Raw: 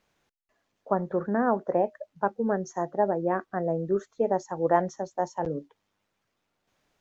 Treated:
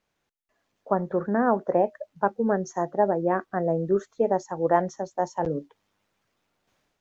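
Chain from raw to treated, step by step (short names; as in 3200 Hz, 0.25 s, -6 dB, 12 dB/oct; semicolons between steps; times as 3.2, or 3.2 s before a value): AGC gain up to 9 dB; gain -5.5 dB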